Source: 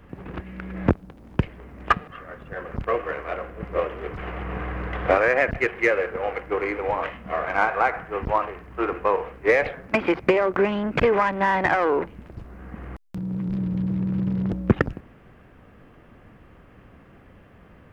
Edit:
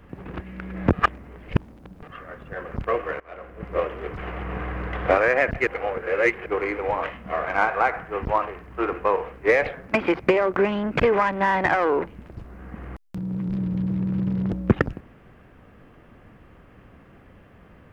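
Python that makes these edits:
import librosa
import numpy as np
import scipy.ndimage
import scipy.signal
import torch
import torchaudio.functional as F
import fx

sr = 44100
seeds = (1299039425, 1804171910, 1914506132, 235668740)

y = fx.edit(x, sr, fx.reverse_span(start_s=0.93, length_s=1.1),
    fx.fade_in_from(start_s=3.2, length_s=0.55, floor_db=-21.0),
    fx.reverse_span(start_s=5.67, length_s=0.79), tone=tone)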